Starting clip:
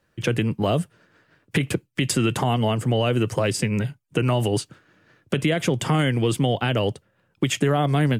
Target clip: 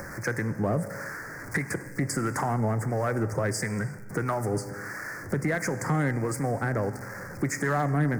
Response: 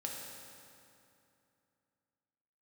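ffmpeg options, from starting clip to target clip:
-filter_complex "[0:a]aeval=exprs='val(0)+0.5*0.0224*sgn(val(0))':channel_layout=same,equalizer=frequency=1800:width_type=o:width=1.5:gain=8,acompressor=mode=upward:threshold=-26dB:ratio=2.5,asuperstop=centerf=3200:order=8:qfactor=1.1,acrossover=split=590[link_01][link_02];[link_01]aeval=exprs='val(0)*(1-0.5/2+0.5/2*cos(2*PI*1.5*n/s))':channel_layout=same[link_03];[link_02]aeval=exprs='val(0)*(1-0.5/2-0.5/2*cos(2*PI*1.5*n/s))':channel_layout=same[link_04];[link_03][link_04]amix=inputs=2:normalize=0,asplit=2[link_05][link_06];[1:a]atrim=start_sample=2205,afade=type=out:start_time=0.42:duration=0.01,atrim=end_sample=18963[link_07];[link_06][link_07]afir=irnorm=-1:irlink=0,volume=-7.5dB[link_08];[link_05][link_08]amix=inputs=2:normalize=0,aeval=exprs='0.422*(cos(1*acos(clip(val(0)/0.422,-1,1)))-cos(1*PI/2))+0.0133*(cos(4*acos(clip(val(0)/0.422,-1,1)))-cos(4*PI/2))+0.0168*(cos(5*acos(clip(val(0)/0.422,-1,1)))-cos(5*PI/2))+0.00531*(cos(6*acos(clip(val(0)/0.422,-1,1)))-cos(6*PI/2))':channel_layout=same,volume=-8dB"

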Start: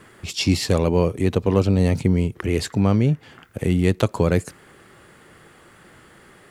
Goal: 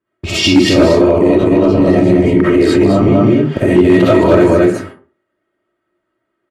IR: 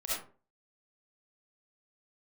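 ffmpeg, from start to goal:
-filter_complex "[0:a]agate=range=-45dB:threshold=-42dB:ratio=16:detection=peak,equalizer=frequency=360:width_type=o:width=0.5:gain=6,aecho=1:1:220:0.668,acompressor=threshold=-23dB:ratio=2,lowpass=frequency=1900:poles=1,aecho=1:1:3.2:0.46,asplit=3[link_01][link_02][link_03];[link_01]afade=type=out:start_time=0.87:duration=0.02[link_04];[link_02]tremolo=f=72:d=0.824,afade=type=in:start_time=0.87:duration=0.02,afade=type=out:start_time=3.06:duration=0.02[link_05];[link_03]afade=type=in:start_time=3.06:duration=0.02[link_06];[link_04][link_05][link_06]amix=inputs=3:normalize=0,highpass=79[link_07];[1:a]atrim=start_sample=2205[link_08];[link_07][link_08]afir=irnorm=-1:irlink=0,asoftclip=type=hard:threshold=-14dB,alimiter=level_in=18dB:limit=-1dB:release=50:level=0:latency=1,volume=-1dB"

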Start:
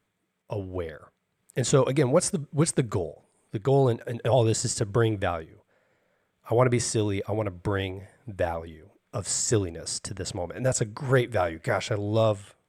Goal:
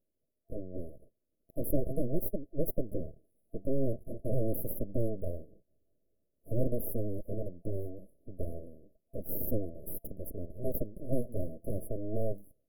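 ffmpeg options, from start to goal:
ffmpeg -i in.wav -af "aeval=exprs='abs(val(0))':channel_layout=same,afftfilt=real='re*(1-between(b*sr/4096,670,10000))':imag='im*(1-between(b*sr/4096,670,10000))':win_size=4096:overlap=0.75,volume=-3.5dB" out.wav

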